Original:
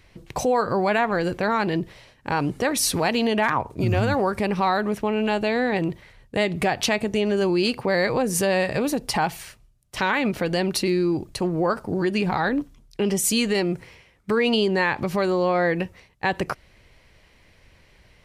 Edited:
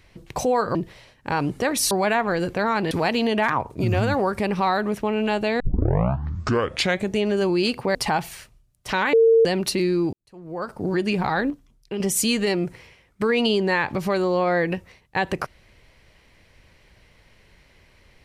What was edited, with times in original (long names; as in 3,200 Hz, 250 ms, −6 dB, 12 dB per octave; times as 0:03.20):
0:00.75–0:01.75: move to 0:02.91
0:05.60: tape start 1.55 s
0:07.95–0:09.03: remove
0:10.21–0:10.53: beep over 454 Hz −11.5 dBFS
0:11.21–0:11.94: fade in quadratic
0:12.58–0:13.08: clip gain −6 dB